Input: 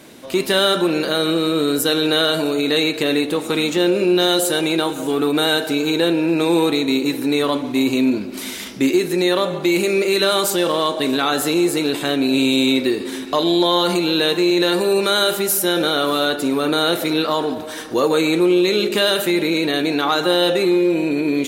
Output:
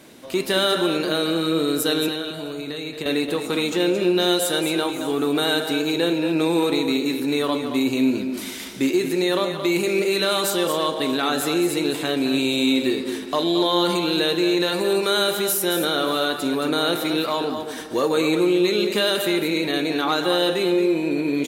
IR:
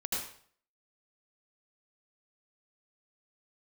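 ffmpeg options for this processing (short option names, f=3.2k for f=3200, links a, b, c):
-filter_complex "[0:a]asettb=1/sr,asplit=3[a][b][c];[a]atrim=end=2.084[d];[b]atrim=start=2.08:end=3.06,asetpts=PTS-STARTPTS,afade=t=in:d=0.004:c=qsin,afade=t=out:st=0.976:d=0.004:c=qsin,acrossover=split=150[e][f];[f]acompressor=threshold=-25dB:ratio=6[g];[e][g]amix=inputs=2:normalize=0[h];[c]atrim=start=3.056[i];[d][h]acrossfade=d=0.004:c1=hsin:c2=qsin[j];[j][i]acrossfade=d=0.004:c1=qsin:c2=hsin,aecho=1:1:224:0.376,volume=-4dB"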